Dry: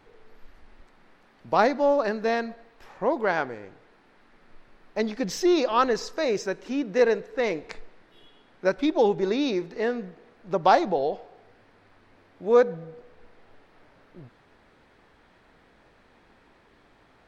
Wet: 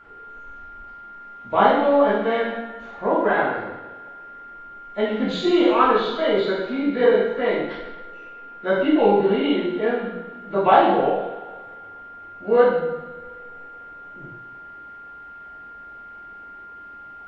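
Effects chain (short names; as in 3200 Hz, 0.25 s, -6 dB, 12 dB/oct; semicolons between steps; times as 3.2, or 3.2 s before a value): nonlinear frequency compression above 1700 Hz 1.5:1; whine 1400 Hz -42 dBFS; two-slope reverb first 0.89 s, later 2.3 s, DRR -9.5 dB; gain -4.5 dB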